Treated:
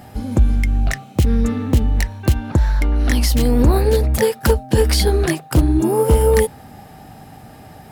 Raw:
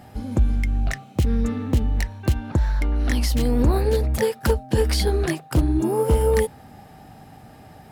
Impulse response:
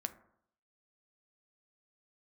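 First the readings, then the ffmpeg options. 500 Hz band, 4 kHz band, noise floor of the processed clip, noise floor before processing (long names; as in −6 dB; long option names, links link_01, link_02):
+5.0 dB, +6.0 dB, −41 dBFS, −46 dBFS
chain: -af "highshelf=frequency=8300:gain=4.5,volume=5dB"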